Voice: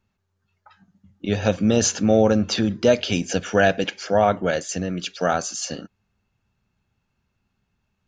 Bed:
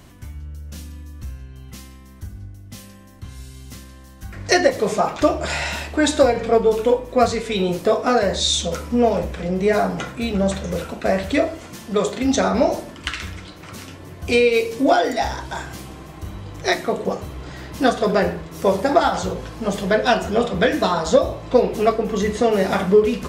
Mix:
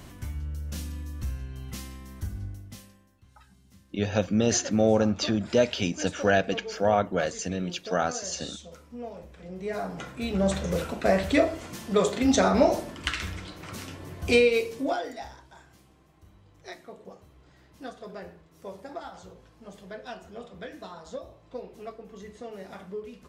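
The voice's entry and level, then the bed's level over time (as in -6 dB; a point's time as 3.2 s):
2.70 s, -5.0 dB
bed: 2.53 s 0 dB
3.22 s -22 dB
9.19 s -22 dB
10.58 s -3 dB
14.34 s -3 dB
15.51 s -23 dB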